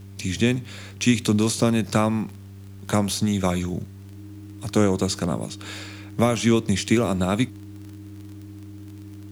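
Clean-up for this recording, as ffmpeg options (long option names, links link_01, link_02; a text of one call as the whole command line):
ffmpeg -i in.wav -af "adeclick=threshold=4,bandreject=frequency=98:width_type=h:width=4,bandreject=frequency=196:width_type=h:width=4,bandreject=frequency=294:width_type=h:width=4,bandreject=frequency=392:width_type=h:width=4,bandreject=frequency=310:width=30,agate=range=-21dB:threshold=-33dB" out.wav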